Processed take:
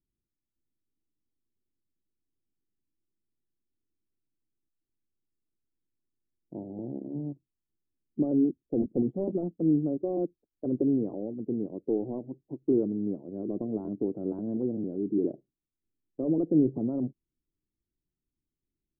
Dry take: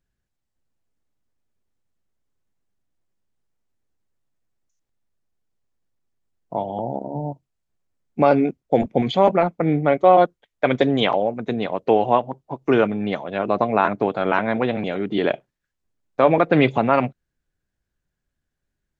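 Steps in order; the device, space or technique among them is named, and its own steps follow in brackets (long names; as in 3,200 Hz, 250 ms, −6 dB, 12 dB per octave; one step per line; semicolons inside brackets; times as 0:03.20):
0:08.77–0:09.24: dynamic equaliser 560 Hz, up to +5 dB, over −25 dBFS, Q 0.98
overdriven synthesiser ladder filter (soft clipping −8 dBFS, distortion −15 dB; transistor ladder low-pass 380 Hz, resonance 55%)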